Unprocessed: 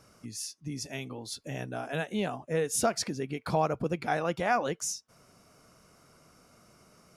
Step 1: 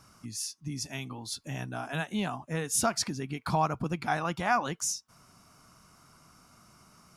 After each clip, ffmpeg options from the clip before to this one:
ffmpeg -i in.wav -af "equalizer=frequency=500:width_type=o:width=1:gain=-12,equalizer=frequency=1000:width_type=o:width=1:gain=5,equalizer=frequency=2000:width_type=o:width=1:gain=-3,volume=2.5dB" out.wav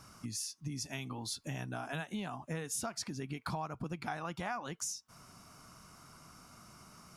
ffmpeg -i in.wav -af "acompressor=threshold=-39dB:ratio=5,volume=2dB" out.wav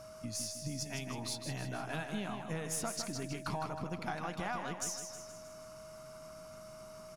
ffmpeg -i in.wav -filter_complex "[0:a]aeval=exprs='if(lt(val(0),0),0.708*val(0),val(0))':channel_layout=same,asplit=2[link_01][link_02];[link_02]aecho=0:1:157|314|471|628|785|942:0.447|0.232|0.121|0.0628|0.0327|0.017[link_03];[link_01][link_03]amix=inputs=2:normalize=0,aeval=exprs='val(0)+0.00316*sin(2*PI*630*n/s)':channel_layout=same,volume=1dB" out.wav

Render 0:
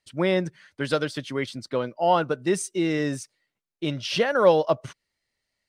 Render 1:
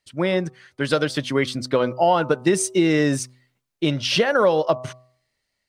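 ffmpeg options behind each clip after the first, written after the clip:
ffmpeg -i in.wav -af "dynaudnorm=framelen=430:gausssize=5:maxgain=11.5dB,bandreject=frequency=126.5:width_type=h:width=4,bandreject=frequency=253:width_type=h:width=4,bandreject=frequency=379.5:width_type=h:width=4,bandreject=frequency=506:width_type=h:width=4,bandreject=frequency=632.5:width_type=h:width=4,bandreject=frequency=759:width_type=h:width=4,bandreject=frequency=885.5:width_type=h:width=4,bandreject=frequency=1012:width_type=h:width=4,bandreject=frequency=1138.5:width_type=h:width=4,bandreject=frequency=1265:width_type=h:width=4,acompressor=threshold=-16dB:ratio=6,volume=2dB" out.wav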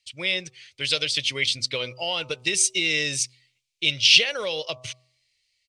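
ffmpeg -i in.wav -af "firequalizer=gain_entry='entry(110,0);entry(160,-10);entry(270,-14);entry(470,-5);entry(720,-11);entry(1600,-7);entry(2300,14);entry(5100,13);entry(8100,10);entry(13000,-3)':delay=0.05:min_phase=1,volume=-5.5dB" out.wav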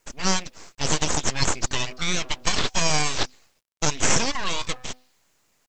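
ffmpeg -i in.wav -af "alimiter=limit=-11dB:level=0:latency=1:release=127,aresample=16000,aeval=exprs='abs(val(0))':channel_layout=same,aresample=44100,acrusher=bits=11:mix=0:aa=0.000001,volume=5dB" out.wav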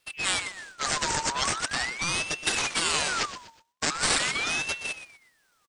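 ffmpeg -i in.wav -filter_complex "[0:a]acrossover=split=180|900[link_01][link_02][link_03];[link_01]aeval=exprs='0.0447*(abs(mod(val(0)/0.0447+3,4)-2)-1)':channel_layout=same[link_04];[link_04][link_02][link_03]amix=inputs=3:normalize=0,aecho=1:1:122|244|366:0.237|0.0759|0.0243,aeval=exprs='val(0)*sin(2*PI*1800*n/s+1800*0.5/0.42*sin(2*PI*0.42*n/s))':channel_layout=same" out.wav

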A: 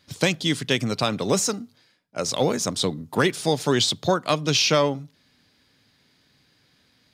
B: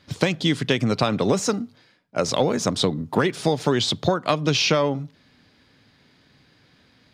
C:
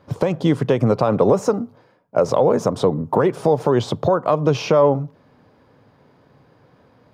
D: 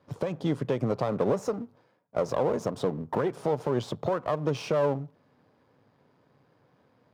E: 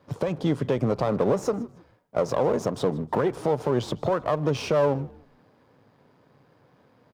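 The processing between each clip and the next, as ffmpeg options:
ffmpeg -i in.wav -af "lowpass=frequency=2600:poles=1,acompressor=threshold=-23dB:ratio=6,volume=7dB" out.wav
ffmpeg -i in.wav -af "equalizer=frequency=125:width_type=o:width=1:gain=6,equalizer=frequency=500:width_type=o:width=1:gain=10,equalizer=frequency=1000:width_type=o:width=1:gain=9,equalizer=frequency=2000:width_type=o:width=1:gain=-5,equalizer=frequency=4000:width_type=o:width=1:gain=-10,equalizer=frequency=8000:width_type=o:width=1:gain=-6,alimiter=limit=-5.5dB:level=0:latency=1:release=100" out.wav
ffmpeg -i in.wav -af "aeval=exprs='if(lt(val(0),0),0.447*val(0),val(0))':channel_layout=same,highpass=89,volume=-8dB" out.wav
ffmpeg -i in.wav -filter_complex "[0:a]asplit=2[link_01][link_02];[link_02]alimiter=limit=-21dB:level=0:latency=1:release=93,volume=-2dB[link_03];[link_01][link_03]amix=inputs=2:normalize=0,asplit=3[link_04][link_05][link_06];[link_05]adelay=156,afreqshift=-62,volume=-22dB[link_07];[link_06]adelay=312,afreqshift=-124,volume=-32.2dB[link_08];[link_04][link_07][link_08]amix=inputs=3:normalize=0" out.wav

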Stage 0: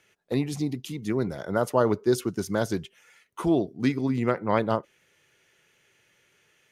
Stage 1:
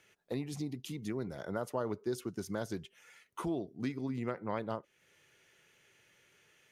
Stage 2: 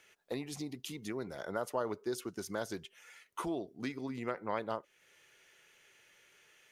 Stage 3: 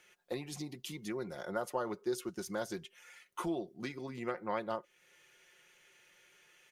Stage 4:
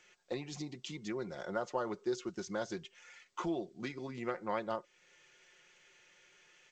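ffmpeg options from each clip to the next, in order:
ffmpeg -i in.wav -af "acompressor=threshold=-39dB:ratio=2,volume=-2dB" out.wav
ffmpeg -i in.wav -af "equalizer=frequency=120:width=0.45:gain=-10,volume=3dB" out.wav
ffmpeg -i in.wav -af "aecho=1:1:5.6:0.47,volume=-1dB" out.wav
ffmpeg -i in.wav -ar 16000 -c:a g722 out.g722

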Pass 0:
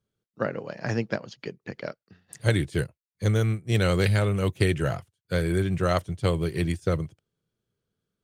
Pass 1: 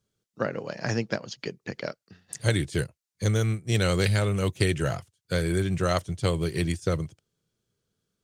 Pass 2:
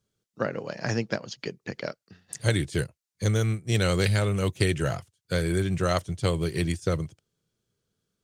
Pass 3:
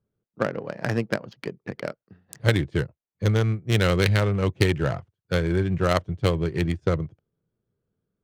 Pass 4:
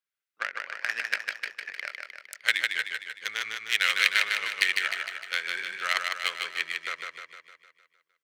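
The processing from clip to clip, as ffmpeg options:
ffmpeg -i in.wav -filter_complex "[0:a]equalizer=frequency=6400:width=0.83:gain=7.5,asplit=2[link_01][link_02];[link_02]acompressor=threshold=-30dB:ratio=6,volume=-1dB[link_03];[link_01][link_03]amix=inputs=2:normalize=0,volume=-3.5dB" out.wav
ffmpeg -i in.wav -af anull out.wav
ffmpeg -i in.wav -af "aeval=exprs='0.531*(cos(1*acos(clip(val(0)/0.531,-1,1)))-cos(1*PI/2))+0.0237*(cos(7*acos(clip(val(0)/0.531,-1,1)))-cos(7*PI/2))':channel_layout=same,adynamicsmooth=sensitivity=3.5:basefreq=1300,volume=5dB" out.wav
ffmpeg -i in.wav -af "highpass=frequency=2000:width_type=q:width=2,aecho=1:1:153|306|459|612|765|918|1071|1224:0.631|0.353|0.198|0.111|0.0621|0.0347|0.0195|0.0109" out.wav

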